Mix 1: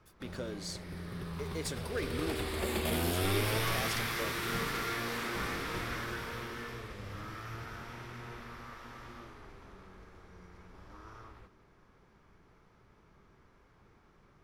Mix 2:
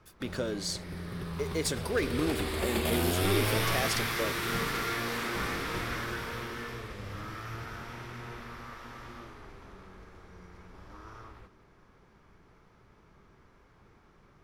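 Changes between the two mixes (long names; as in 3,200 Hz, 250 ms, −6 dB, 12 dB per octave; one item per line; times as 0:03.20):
speech +7.5 dB
background +3.0 dB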